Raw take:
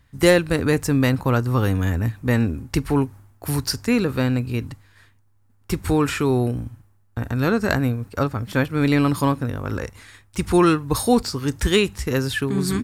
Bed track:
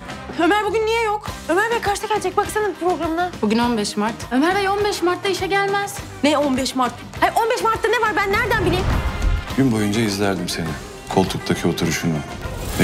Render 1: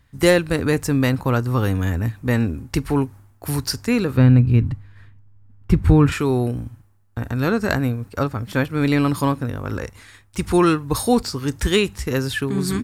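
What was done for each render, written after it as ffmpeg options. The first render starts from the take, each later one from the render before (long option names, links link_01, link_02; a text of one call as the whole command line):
ffmpeg -i in.wav -filter_complex "[0:a]asettb=1/sr,asplit=3[link_01][link_02][link_03];[link_01]atrim=end=4.174[link_04];[link_02]atrim=start=4.17:end=6.12,asetpts=PTS-STARTPTS,afade=type=in:duration=0.004:curve=qsin,afade=type=out:start_time=1.946:duration=0.004:curve=qsin,bass=frequency=250:gain=12,treble=frequency=4000:gain=-12[link_05];[link_03]atrim=start=6.116[link_06];[link_04][link_05]acrossfade=duration=0.004:curve1=hsin:curve2=qsin[link_07];[link_07][link_06]acrossfade=duration=0.004:curve1=qsin:curve2=hsin" out.wav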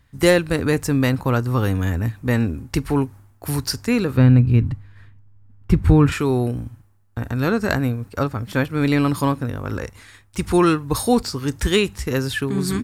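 ffmpeg -i in.wav -af anull out.wav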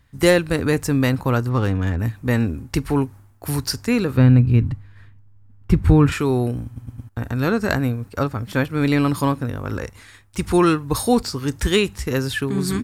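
ffmpeg -i in.wav -filter_complex "[0:a]asplit=3[link_01][link_02][link_03];[link_01]afade=type=out:start_time=1.48:duration=0.02[link_04];[link_02]adynamicsmooth=sensitivity=4:basefreq=2700,afade=type=in:start_time=1.48:duration=0.02,afade=type=out:start_time=1.98:duration=0.02[link_05];[link_03]afade=type=in:start_time=1.98:duration=0.02[link_06];[link_04][link_05][link_06]amix=inputs=3:normalize=0,asplit=5[link_07][link_08][link_09][link_10][link_11];[link_07]atrim=end=6.762[link_12];[link_08]atrim=start=6.648:end=6.762[link_13];[link_09]atrim=start=6.648:end=6.762[link_14];[link_10]atrim=start=6.648:end=6.762[link_15];[link_11]atrim=start=7.088[link_16];[link_12][link_13]acrossfade=duration=0.004:curve1=hsin:curve2=hsin[link_17];[link_17][link_14]acrossfade=duration=0.004:curve1=hsin:curve2=hsin[link_18];[link_18][link_15]acrossfade=duration=0.004:curve1=hsin:curve2=hsin[link_19];[link_19][link_16]acrossfade=duration=0.004:curve1=hsin:curve2=hsin" out.wav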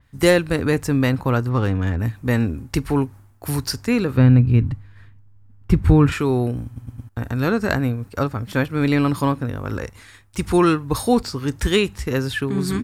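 ffmpeg -i in.wav -af "adynamicequalizer=threshold=0.00891:dfrequency=4400:dqfactor=0.7:tfrequency=4400:tqfactor=0.7:attack=5:release=100:ratio=0.375:range=2.5:mode=cutabove:tftype=highshelf" out.wav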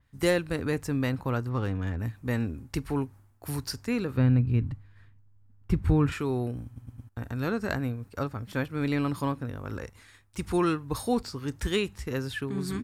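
ffmpeg -i in.wav -af "volume=-9.5dB" out.wav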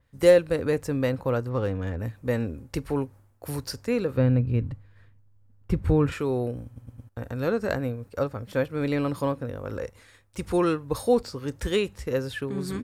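ffmpeg -i in.wav -af "equalizer=frequency=520:width_type=o:width=0.5:gain=11" out.wav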